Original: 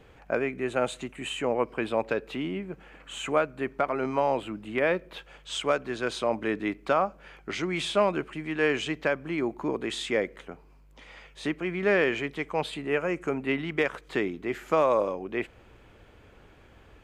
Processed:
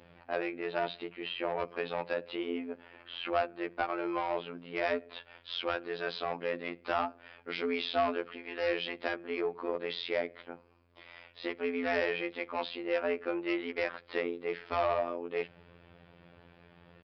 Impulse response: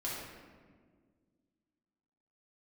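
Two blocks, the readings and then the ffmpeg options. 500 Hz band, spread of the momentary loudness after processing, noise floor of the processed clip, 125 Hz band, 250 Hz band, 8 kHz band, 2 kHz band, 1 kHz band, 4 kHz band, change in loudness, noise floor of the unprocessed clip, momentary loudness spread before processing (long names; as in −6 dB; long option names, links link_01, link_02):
−6.0 dB, 10 LU, −60 dBFS, −13.5 dB, −7.5 dB, below −25 dB, −5.5 dB, −4.5 dB, −3.5 dB, −6.0 dB, −55 dBFS, 10 LU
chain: -af "afreqshift=73,aresample=11025,asoftclip=type=tanh:threshold=-21dB,aresample=44100,afftfilt=real='hypot(re,im)*cos(PI*b)':imag='0':win_size=2048:overlap=0.75,bandreject=frequency=60:width_type=h:width=6,bandreject=frequency=120:width_type=h:width=6,bandreject=frequency=180:width_type=h:width=6"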